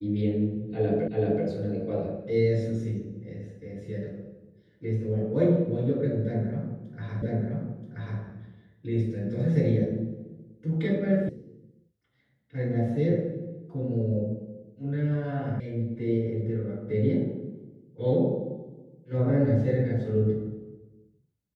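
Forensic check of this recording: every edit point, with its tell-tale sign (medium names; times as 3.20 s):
1.08 s: repeat of the last 0.38 s
7.22 s: repeat of the last 0.98 s
11.29 s: sound stops dead
15.60 s: sound stops dead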